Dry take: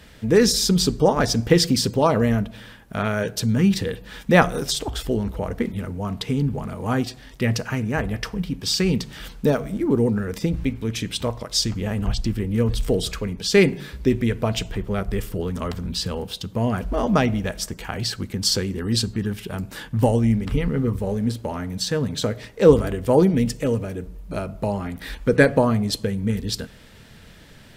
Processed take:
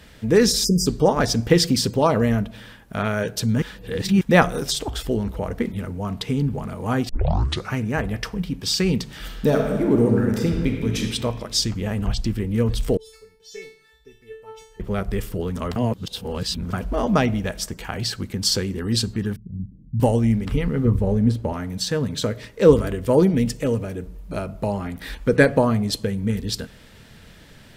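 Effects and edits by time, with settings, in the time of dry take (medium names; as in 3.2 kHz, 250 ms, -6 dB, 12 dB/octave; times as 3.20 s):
0.65–0.86 s: spectral selection erased 590–4800 Hz
3.62–4.21 s: reverse
7.09 s: tape start 0.65 s
9.17–11.00 s: reverb throw, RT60 1.8 s, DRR 1.5 dB
12.97–14.80 s: feedback comb 440 Hz, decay 0.52 s, mix 100%
15.76–16.73 s: reverse
19.36–20.00 s: inverse Chebyshev low-pass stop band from 1.3 kHz, stop band 80 dB
20.85–21.53 s: tilt EQ -2 dB/octave
22.07–23.23 s: band-stop 760 Hz, Q 5.9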